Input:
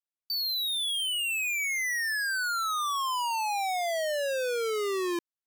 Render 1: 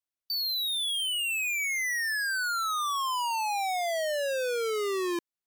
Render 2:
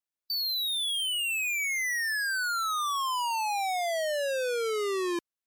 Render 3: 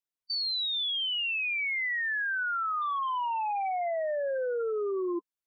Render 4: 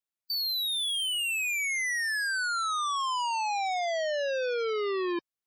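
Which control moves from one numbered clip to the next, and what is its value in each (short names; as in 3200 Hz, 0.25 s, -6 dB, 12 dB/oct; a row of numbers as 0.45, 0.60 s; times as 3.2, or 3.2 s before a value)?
spectral gate, under each frame's peak: -55, -40, -10, -25 dB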